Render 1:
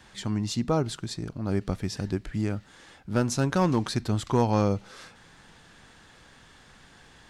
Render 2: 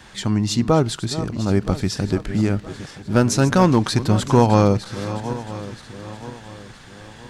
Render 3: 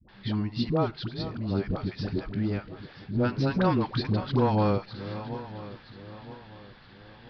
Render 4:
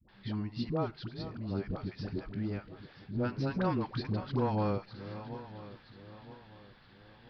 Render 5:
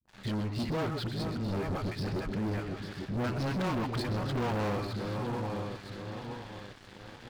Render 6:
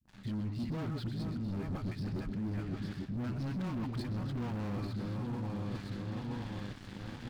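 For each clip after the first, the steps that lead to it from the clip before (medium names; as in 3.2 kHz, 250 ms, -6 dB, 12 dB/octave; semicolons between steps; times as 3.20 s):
backward echo that repeats 485 ms, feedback 62%, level -13 dB; trim +8.5 dB
steep low-pass 4.9 kHz 72 dB/octave; phase dispersion highs, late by 88 ms, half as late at 520 Hz; trim -9 dB
dynamic bell 3.6 kHz, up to -4 dB, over -55 dBFS, Q 3; trim -7 dB
multi-tap echo 126/133/849 ms -13.5/-17/-14 dB; waveshaping leveller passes 5; trim -8.5 dB
resonant low shelf 330 Hz +7 dB, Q 1.5; reverse; compression 6:1, threshold -35 dBFS, peak gain reduction 12.5 dB; reverse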